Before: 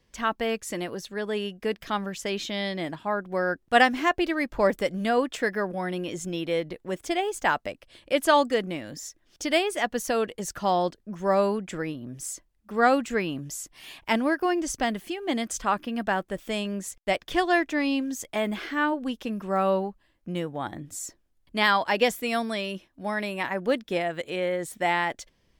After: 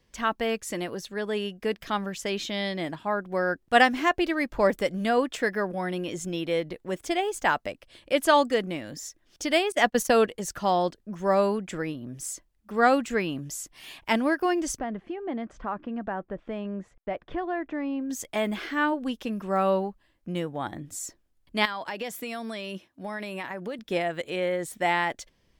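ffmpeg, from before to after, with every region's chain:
ffmpeg -i in.wav -filter_complex "[0:a]asettb=1/sr,asplit=3[link_01][link_02][link_03];[link_01]atrim=end=9.724[link_04];[link_02]atrim=start=9.72:end=10.26,asetpts=PTS-STARTPTS,afade=type=in:duration=0.004:curve=qsin,afade=type=out:start_time=0.536:duration=0.004:curve=qsin,agate=range=-25dB:threshold=-35dB:ratio=16:release=100:detection=peak,acontrast=29[link_05];[link_03]atrim=start=10.256[link_06];[link_04][link_05]acrossfade=duration=0.004:curve1=hsin:curve2=qsin[link_07];[link_07][link_06]acrossfade=duration=0.004:curve1=qsin:curve2=hsin,asettb=1/sr,asplit=3[link_08][link_09][link_10];[link_08]atrim=end=14.794[link_11];[link_09]atrim=start=14.79:end=18.1,asetpts=PTS-STARTPTS,afade=type=in:duration=0.004:curve=qsin,afade=type=out:start_time=3.306:duration=0.004:curve=qsin,lowpass=1400,acompressor=threshold=-30dB:ratio=2:attack=3.2:release=140:knee=1:detection=peak[link_12];[link_10]atrim=start=18.096[link_13];[link_11][link_12]acrossfade=duration=0.004:curve1=hsin:curve2=qsin[link_14];[link_14][link_13]acrossfade=duration=0.004:curve1=qsin:curve2=hsin,asettb=1/sr,asplit=3[link_15][link_16][link_17];[link_15]atrim=end=21.654[link_18];[link_16]atrim=start=21.65:end=23.79,asetpts=PTS-STARTPTS,afade=type=in:duration=0.004:curve=qsin,afade=type=out:start_time=2.136:duration=0.004:curve=qsin,highpass=99,acompressor=threshold=-30dB:ratio=6:attack=3.2:release=140:knee=1:detection=peak[link_19];[link_17]atrim=start=23.786[link_20];[link_18][link_19]acrossfade=duration=0.004:curve1=hsin:curve2=qsin[link_21];[link_21][link_20]acrossfade=duration=0.004:curve1=qsin:curve2=hsin" out.wav

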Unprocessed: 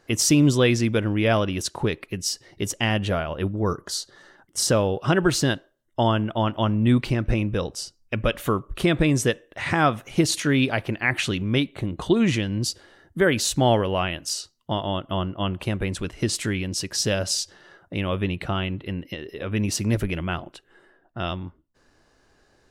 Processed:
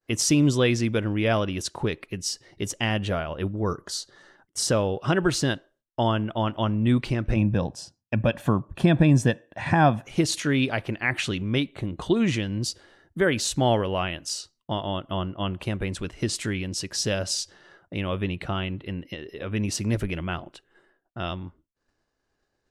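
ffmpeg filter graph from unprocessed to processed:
ffmpeg -i in.wav -filter_complex "[0:a]asettb=1/sr,asplit=3[link_01][link_02][link_03];[link_01]atrim=end=7.364[link_04];[link_02]atrim=start=7.36:end=10.06,asetpts=PTS-STARTPTS,afade=type=in:duration=0.004:curve=qsin,afade=type=out:start_time=2.696:duration=0.004:curve=qsin,highpass=110,tiltshelf=frequency=1200:gain=6,aecho=1:1:1.2:0.59,atrim=end_sample=119070[link_05];[link_03]atrim=start=10.056[link_06];[link_04][link_05]acrossfade=duration=0.004:curve1=hsin:curve2=qsin[link_07];[link_07][link_06]acrossfade=duration=0.004:curve1=qsin:curve2=hsin,lowpass=11000,agate=range=-33dB:threshold=-51dB:ratio=3:detection=peak,volume=-2.5dB" out.wav

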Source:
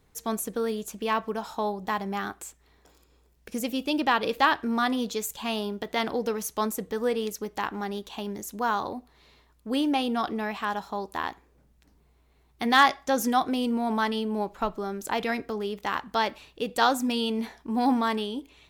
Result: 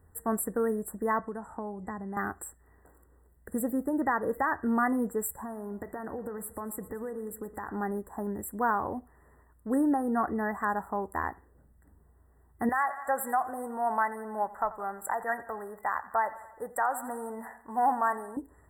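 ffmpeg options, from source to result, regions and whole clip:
ffmpeg -i in.wav -filter_complex "[0:a]asettb=1/sr,asplit=3[link_01][link_02][link_03];[link_01]atrim=end=1.194[link_04];[link_02]atrim=start=1.19:end=2.17,asetpts=PTS-STARTPTS,afade=type=in:duration=0.004:curve=qsin,afade=type=out:start_time=0.976:duration=0.004:curve=qsin,lowpass=frequency=9700:width=0.5412,lowpass=frequency=9700:width=1.3066,acrossover=split=370|3800[link_05][link_06][link_07];[link_05]acompressor=threshold=-38dB:ratio=4[link_08];[link_06]acompressor=threshold=-41dB:ratio=4[link_09];[link_07]acompressor=threshold=-57dB:ratio=4[link_10];[link_08][link_09][link_10]amix=inputs=3:normalize=0[link_11];[link_03]atrim=start=2.166[link_12];[link_04][link_11]acrossfade=duration=0.004:curve1=hsin:curve2=qsin[link_13];[link_13][link_12]acrossfade=duration=0.004:curve1=qsin:curve2=hsin,asettb=1/sr,asplit=3[link_14][link_15][link_16];[link_14]atrim=end=5.374[link_17];[link_15]atrim=start=5.37:end=7.69,asetpts=PTS-STARTPTS,afade=type=in:duration=0.004:curve=qsin,afade=type=out:start_time=2.316:duration=0.004:curve=qsin,acompressor=threshold=-34dB:ratio=5:attack=3.2:release=140:knee=1:detection=peak,aecho=1:1:117|234|351|468|585:0.15|0.0778|0.0405|0.021|0.0109,atrim=end_sample=102312[link_18];[link_16]atrim=start=7.686[link_19];[link_17][link_18]acrossfade=duration=0.004:curve1=hsin:curve2=qsin[link_20];[link_20][link_19]acrossfade=duration=0.004:curve1=qsin:curve2=hsin,asettb=1/sr,asplit=3[link_21][link_22][link_23];[link_21]atrim=end=12.694[link_24];[link_22]atrim=start=12.69:end=18.37,asetpts=PTS-STARTPTS,afade=type=in:duration=0.004:curve=qsin,afade=type=out:start_time=5.676:duration=0.004:curve=qsin,lowshelf=frequency=480:width_type=q:width=1.5:gain=-12,aecho=1:1:87|174|261|348|435:0.126|0.068|0.0367|0.0198|0.0107,atrim=end_sample=250488[link_25];[link_23]atrim=start=18.366[link_26];[link_24][link_25]acrossfade=duration=0.004:curve1=hsin:curve2=qsin[link_27];[link_27][link_26]acrossfade=duration=0.004:curve1=qsin:curve2=hsin,alimiter=limit=-16.5dB:level=0:latency=1:release=227,equalizer=frequency=83:width_type=o:width=0.32:gain=13.5,afftfilt=real='re*(1-between(b*sr/4096,2000,7400))':imag='im*(1-between(b*sr/4096,2000,7400))':win_size=4096:overlap=0.75" out.wav

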